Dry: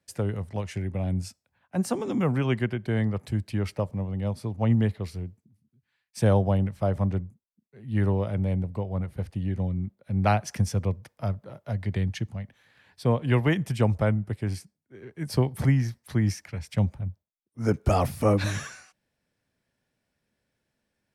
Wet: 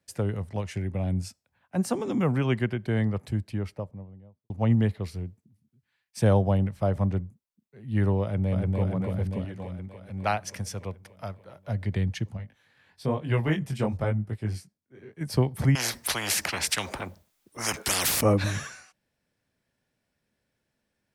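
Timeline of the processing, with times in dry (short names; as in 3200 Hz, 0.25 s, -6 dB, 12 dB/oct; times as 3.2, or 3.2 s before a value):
3.08–4.5 studio fade out
8.23–8.8 echo throw 0.29 s, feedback 75%, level -1.5 dB
9.45–11.67 low shelf 410 Hz -11.5 dB
12.37–15.21 chorus 1 Hz, delay 18 ms, depth 4.9 ms
15.75–18.21 spectral compressor 10:1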